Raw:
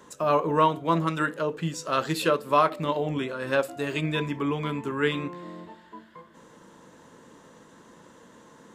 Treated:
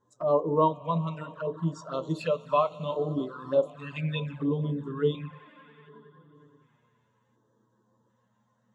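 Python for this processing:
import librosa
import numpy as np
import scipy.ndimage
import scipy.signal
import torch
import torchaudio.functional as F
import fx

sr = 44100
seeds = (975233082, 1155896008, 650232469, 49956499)

p1 = scipy.signal.sosfilt(scipy.signal.bessel(2, 5500.0, 'lowpass', norm='mag', fs=sr, output='sos'), x)
p2 = fx.high_shelf(p1, sr, hz=4000.0, db=9.0)
p3 = fx.hum_notches(p2, sr, base_hz=60, count=5)
p4 = p3 + fx.echo_swell(p3, sr, ms=92, loudest=5, wet_db=-18.0, dry=0)
p5 = fx.filter_lfo_notch(p4, sr, shape='square', hz=0.68, low_hz=350.0, high_hz=2400.0, q=1.4)
p6 = fx.dmg_buzz(p5, sr, base_hz=120.0, harmonics=10, level_db=-58.0, tilt_db=-4, odd_only=False)
p7 = fx.env_flanger(p6, sr, rest_ms=11.9, full_db=-23.5)
y = fx.spectral_expand(p7, sr, expansion=1.5)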